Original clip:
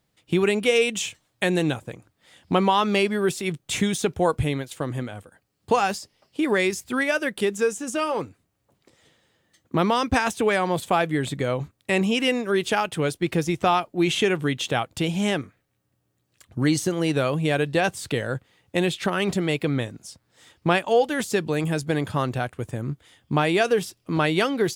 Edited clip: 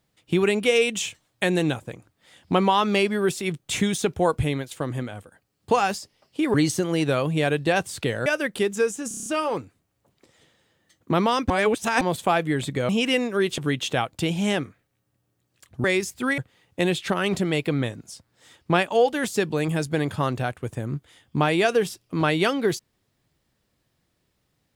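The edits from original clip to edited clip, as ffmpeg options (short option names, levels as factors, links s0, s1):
-filter_complex "[0:a]asplit=15[s0][s1][s2][s3][s4][s5][s6][s7][s8][s9][s10][s11][s12][s13][s14];[s0]atrim=end=6.542[s15];[s1]atrim=start=16.618:end=18.342[s16];[s2]atrim=start=7.078:end=7.932[s17];[s3]atrim=start=7.898:end=7.932[s18];[s4]atrim=start=7.898:end=7.932[s19];[s5]atrim=start=7.898:end=7.932[s20];[s6]atrim=start=7.898:end=7.932[s21];[s7]atrim=start=7.898:end=7.932[s22];[s8]atrim=start=7.898:end=10.142[s23];[s9]atrim=start=10.138:end=10.652,asetpts=PTS-STARTPTS,areverse[s24];[s10]atrim=start=10.648:end=11.532[s25];[s11]atrim=start=12.028:end=12.722[s26];[s12]atrim=start=14.358:end=16.622[s27];[s13]atrim=start=6.538:end=7.082[s28];[s14]atrim=start=18.338[s29];[s15][s16]acrossfade=d=0.004:c1=hsin:c2=hsin[s30];[s30][s17]acrossfade=d=0.004:c1=hsin:c2=hsin[s31];[s31][s18]acrossfade=d=0.004:c1=hsin:c2=hsin[s32];[s32][s19]acrossfade=d=0.004:c1=hsin:c2=hsin[s33];[s33][s20]acrossfade=d=0.004:c1=hsin:c2=hsin[s34];[s34][s21]acrossfade=d=0.004:c1=hsin:c2=hsin[s35];[s35][s22]acrossfade=d=0.004:c1=hsin:c2=hsin[s36];[s36][s23]acrossfade=d=0.004:c1=hsin:c2=hsin[s37];[s37][s24]acrossfade=d=0.004:c1=hsin:c2=hsin[s38];[s38][s25]acrossfade=d=0.004:c1=hsin:c2=hsin[s39];[s39][s26]acrossfade=d=0.004:c1=hsin:c2=hsin[s40];[s40][s27]acrossfade=d=0.004:c1=hsin:c2=hsin[s41];[s41][s28]acrossfade=d=0.004:c1=hsin:c2=hsin[s42];[s42][s29]acrossfade=d=0.004:c1=hsin:c2=hsin"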